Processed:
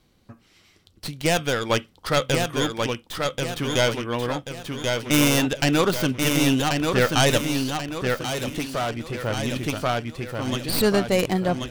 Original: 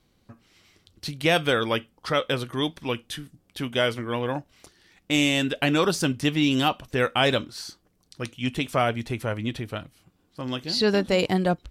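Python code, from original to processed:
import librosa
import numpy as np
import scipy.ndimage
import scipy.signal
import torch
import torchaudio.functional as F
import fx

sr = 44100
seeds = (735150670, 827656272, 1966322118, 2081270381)

y = fx.tracing_dist(x, sr, depth_ms=0.19)
y = fx.tremolo_shape(y, sr, shape='saw_down', hz=0.59, depth_pct=50)
y = fx.echo_feedback(y, sr, ms=1085, feedback_pct=43, wet_db=-4.0)
y = fx.tube_stage(y, sr, drive_db=24.0, bias=0.5, at=(8.21, 9.23))
y = F.gain(torch.from_numpy(y), 3.5).numpy()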